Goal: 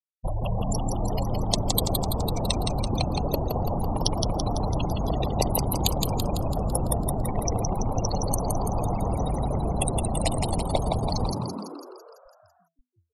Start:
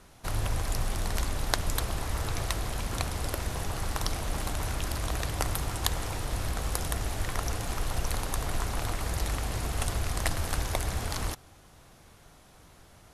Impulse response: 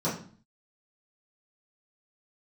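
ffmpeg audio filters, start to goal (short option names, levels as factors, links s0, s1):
-filter_complex "[0:a]aeval=exprs='0.631*(cos(1*acos(clip(val(0)/0.631,-1,1)))-cos(1*PI/2))+0.251*(cos(5*acos(clip(val(0)/0.631,-1,1)))-cos(5*PI/2))+0.0355*(cos(8*acos(clip(val(0)/0.631,-1,1)))-cos(8*PI/2))':c=same,acrossover=split=310[s0][s1];[s0]acompressor=threshold=0.0398:ratio=12[s2];[s2][s1]amix=inputs=2:normalize=0,afftfilt=real='re*gte(hypot(re,im),0.1)':imag='im*gte(hypot(re,im),0.1)':win_size=1024:overlap=0.75,asplit=2[s3][s4];[s4]asoftclip=type=tanh:threshold=0.266,volume=0.398[s5];[s3][s5]amix=inputs=2:normalize=0,asuperstop=centerf=1500:order=4:qfactor=0.7,asplit=9[s6][s7][s8][s9][s10][s11][s12][s13][s14];[s7]adelay=167,afreqshift=83,volume=0.631[s15];[s8]adelay=334,afreqshift=166,volume=0.367[s16];[s9]adelay=501,afreqshift=249,volume=0.211[s17];[s10]adelay=668,afreqshift=332,volume=0.123[s18];[s11]adelay=835,afreqshift=415,volume=0.0716[s19];[s12]adelay=1002,afreqshift=498,volume=0.0412[s20];[s13]adelay=1169,afreqshift=581,volume=0.024[s21];[s14]adelay=1336,afreqshift=664,volume=0.014[s22];[s6][s15][s16][s17][s18][s19][s20][s21][s22]amix=inputs=9:normalize=0"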